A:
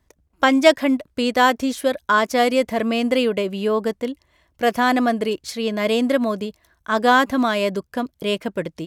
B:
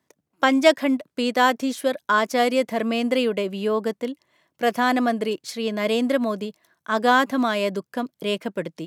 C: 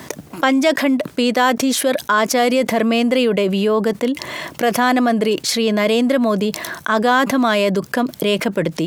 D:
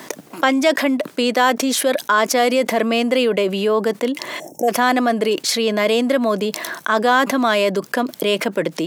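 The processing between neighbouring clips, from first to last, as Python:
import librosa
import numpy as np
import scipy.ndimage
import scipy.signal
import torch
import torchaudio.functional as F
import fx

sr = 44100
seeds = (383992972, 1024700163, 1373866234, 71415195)

y1 = scipy.signal.sosfilt(scipy.signal.butter(4, 140.0, 'highpass', fs=sr, output='sos'), x)
y1 = y1 * librosa.db_to_amplitude(-2.5)
y2 = fx.env_flatten(y1, sr, amount_pct=70)
y2 = y2 * librosa.db_to_amplitude(-1.5)
y3 = scipy.signal.sosfilt(scipy.signal.butter(2, 250.0, 'highpass', fs=sr, output='sos'), y2)
y3 = fx.spec_box(y3, sr, start_s=4.4, length_s=0.29, low_hz=900.0, high_hz=5400.0, gain_db=-29)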